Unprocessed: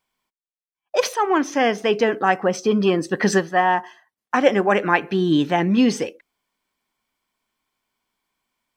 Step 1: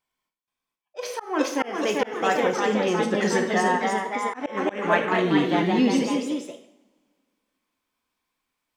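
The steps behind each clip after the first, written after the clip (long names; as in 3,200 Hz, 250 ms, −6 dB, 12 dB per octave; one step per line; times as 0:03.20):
delay with pitch and tempo change per echo 477 ms, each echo +1 semitone, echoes 3
coupled-rooms reverb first 0.62 s, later 2.4 s, from −28 dB, DRR 4 dB
volume swells 210 ms
level −6.5 dB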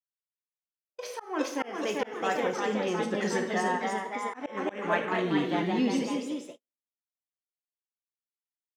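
noise gate −37 dBFS, range −45 dB
level −6.5 dB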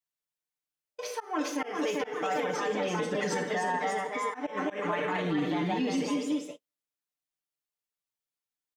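comb filter 6.7 ms, depth 82%
brickwall limiter −21.5 dBFS, peak gain reduction 9.5 dB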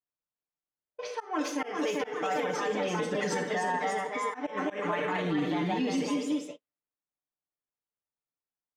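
low-pass that shuts in the quiet parts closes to 1,200 Hz, open at −28 dBFS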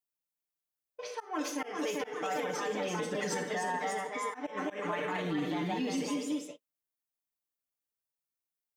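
high-shelf EQ 8,200 Hz +11.5 dB
level −4 dB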